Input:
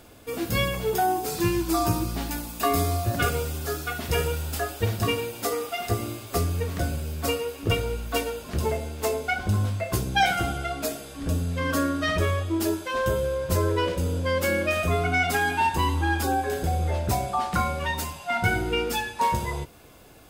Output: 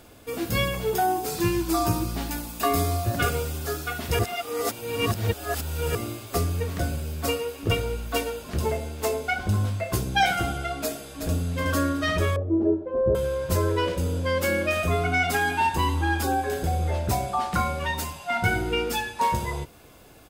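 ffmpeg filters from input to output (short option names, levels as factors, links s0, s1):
-filter_complex "[0:a]asplit=2[s0][s1];[s1]afade=t=in:st=10.83:d=0.01,afade=t=out:st=11.55:d=0.01,aecho=0:1:370|740|1110|1480|1850:0.446684|0.178673|0.0714694|0.0285877|0.0114351[s2];[s0][s2]amix=inputs=2:normalize=0,asettb=1/sr,asplit=3[s3][s4][s5];[s3]atrim=end=12.364[s6];[s4]atrim=start=12.36:end=13.15,asetpts=PTS-STARTPTS,afade=t=in:d=0.004:c=qsin,afade=t=out:st=0.786:d=0.004:c=qsin,lowpass=f=490:t=q:w=1.9[s7];[s5]atrim=start=13.146[s8];[s6][s7]acrossfade=d=0.004:c1=hsin:c2=qsin[s9];[s9][s8]acrossfade=d=0.004:c1=qsin:c2=hsin,asplit=3[s10][s11][s12];[s10]atrim=end=4.192[s13];[s11]atrim=start=4.188:end=5.952,asetpts=PTS-STARTPTS,areverse[s14];[s12]atrim=start=5.948[s15];[s13][s14]acrossfade=d=0.004:c1=hsin:c2=hsin[s16];[s16][s15]acrossfade=d=0.004:c1=hsin:c2=hsin"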